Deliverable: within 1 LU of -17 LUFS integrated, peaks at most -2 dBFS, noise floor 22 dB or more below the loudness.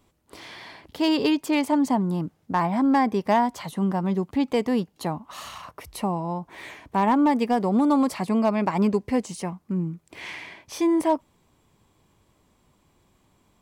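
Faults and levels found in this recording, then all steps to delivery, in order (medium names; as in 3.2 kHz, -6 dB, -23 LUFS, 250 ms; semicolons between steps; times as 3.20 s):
clipped samples 0.2%; clipping level -13.0 dBFS; loudness -24.0 LUFS; peak level -13.0 dBFS; loudness target -17.0 LUFS
-> clip repair -13 dBFS; trim +7 dB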